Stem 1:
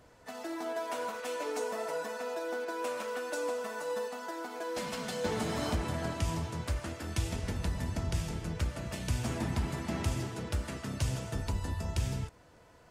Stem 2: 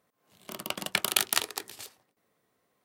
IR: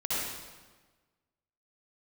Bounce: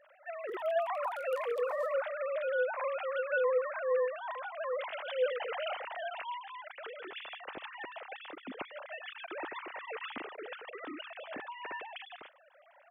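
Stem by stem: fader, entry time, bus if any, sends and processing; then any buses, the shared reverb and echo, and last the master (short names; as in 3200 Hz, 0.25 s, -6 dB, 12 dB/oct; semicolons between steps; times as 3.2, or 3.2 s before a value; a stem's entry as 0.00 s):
-0.5 dB, 0.00 s, no send, sine-wave speech; tilt +2 dB/oct
1.12 s -23 dB -> 1.5 s -16 dB, 0.00 s, send -20.5 dB, three-band isolator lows -18 dB, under 330 Hz, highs -17 dB, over 2200 Hz; compressor 5:1, threshold -40 dBFS, peak gain reduction 13 dB; high shelf 2700 Hz +11.5 dB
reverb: on, RT60 1.3 s, pre-delay 55 ms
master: dry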